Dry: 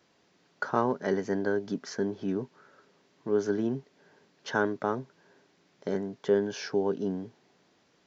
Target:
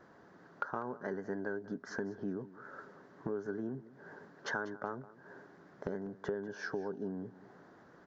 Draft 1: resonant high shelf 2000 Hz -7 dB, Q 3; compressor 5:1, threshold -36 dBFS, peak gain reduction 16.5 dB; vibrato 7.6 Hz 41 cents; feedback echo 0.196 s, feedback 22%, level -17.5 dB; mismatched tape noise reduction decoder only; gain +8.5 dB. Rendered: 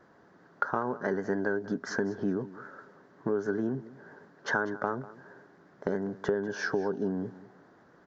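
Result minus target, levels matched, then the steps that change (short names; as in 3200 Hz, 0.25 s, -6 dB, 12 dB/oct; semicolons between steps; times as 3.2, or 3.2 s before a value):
compressor: peak gain reduction -8.5 dB
change: compressor 5:1, threshold -46.5 dBFS, peak gain reduction 24.5 dB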